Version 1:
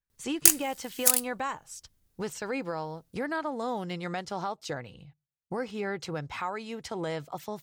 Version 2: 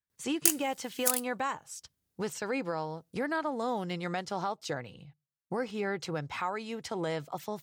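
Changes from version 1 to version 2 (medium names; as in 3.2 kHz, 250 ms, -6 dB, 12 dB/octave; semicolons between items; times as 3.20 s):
background -6.5 dB; master: add high-pass 90 Hz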